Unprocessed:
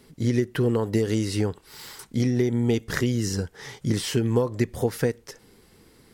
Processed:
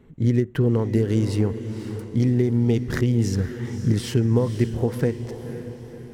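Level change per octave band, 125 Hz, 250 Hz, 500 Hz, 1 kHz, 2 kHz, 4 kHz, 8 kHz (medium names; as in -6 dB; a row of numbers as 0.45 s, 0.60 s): +5.5 dB, +3.0 dB, +0.5 dB, -1.5 dB, -2.5 dB, -4.0 dB, -5.0 dB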